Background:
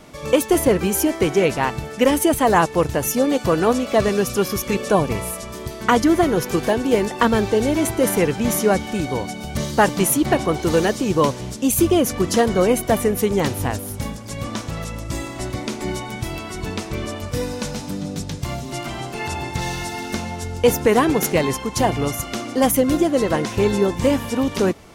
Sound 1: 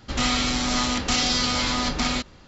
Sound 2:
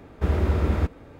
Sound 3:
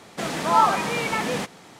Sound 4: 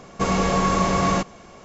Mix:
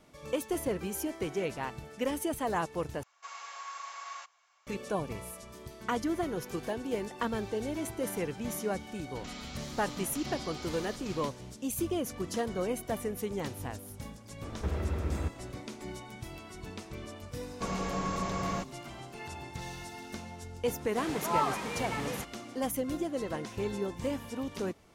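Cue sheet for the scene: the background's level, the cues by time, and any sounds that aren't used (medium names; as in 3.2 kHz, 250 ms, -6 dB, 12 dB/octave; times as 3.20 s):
background -16 dB
3.03 s: replace with 4 -18 dB + high-pass 960 Hz 24 dB/octave
9.07 s: add 1 -15.5 dB + compression 2.5:1, threshold -29 dBFS
14.42 s: add 2 -10.5 dB + three bands compressed up and down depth 70%
17.41 s: add 4 -13.5 dB
20.79 s: add 3 -11.5 dB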